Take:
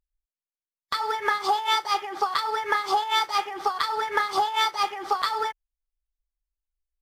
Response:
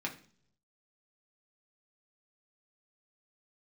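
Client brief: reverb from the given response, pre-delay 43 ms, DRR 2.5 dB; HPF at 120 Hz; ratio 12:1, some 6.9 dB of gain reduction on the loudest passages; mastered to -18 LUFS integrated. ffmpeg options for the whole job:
-filter_complex "[0:a]highpass=120,acompressor=threshold=0.0562:ratio=12,asplit=2[s0][s1];[1:a]atrim=start_sample=2205,adelay=43[s2];[s1][s2]afir=irnorm=-1:irlink=0,volume=0.531[s3];[s0][s3]amix=inputs=2:normalize=0,volume=3.16"

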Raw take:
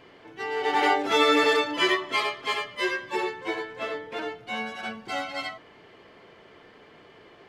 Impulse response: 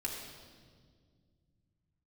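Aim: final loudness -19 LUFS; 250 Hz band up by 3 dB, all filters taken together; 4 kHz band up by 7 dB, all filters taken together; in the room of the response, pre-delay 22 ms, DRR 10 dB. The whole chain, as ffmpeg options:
-filter_complex "[0:a]equalizer=f=250:t=o:g=4,equalizer=f=4000:t=o:g=9,asplit=2[s0][s1];[1:a]atrim=start_sample=2205,adelay=22[s2];[s1][s2]afir=irnorm=-1:irlink=0,volume=0.266[s3];[s0][s3]amix=inputs=2:normalize=0,volume=1.58"

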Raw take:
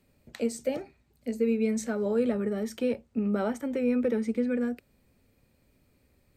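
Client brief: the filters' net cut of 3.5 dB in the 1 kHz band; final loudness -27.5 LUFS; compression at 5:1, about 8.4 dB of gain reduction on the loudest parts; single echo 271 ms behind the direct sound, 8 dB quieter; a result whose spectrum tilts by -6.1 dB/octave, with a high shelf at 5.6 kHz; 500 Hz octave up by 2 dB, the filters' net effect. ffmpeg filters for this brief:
-af "equalizer=f=500:t=o:g=3.5,equalizer=f=1000:t=o:g=-6.5,highshelf=f=5600:g=-7.5,acompressor=threshold=0.0316:ratio=5,aecho=1:1:271:0.398,volume=2.24"

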